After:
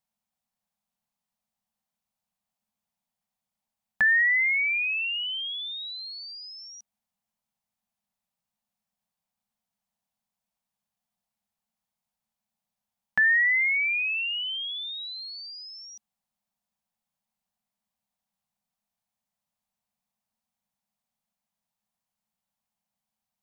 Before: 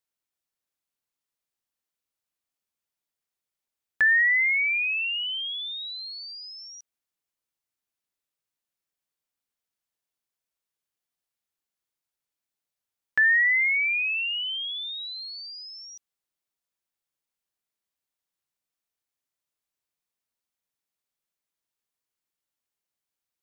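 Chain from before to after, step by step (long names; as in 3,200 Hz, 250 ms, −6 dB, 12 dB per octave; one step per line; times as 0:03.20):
drawn EQ curve 130 Hz 0 dB, 220 Hz +11 dB, 310 Hz −20 dB, 760 Hz +5 dB, 1,400 Hz −6 dB
level +5 dB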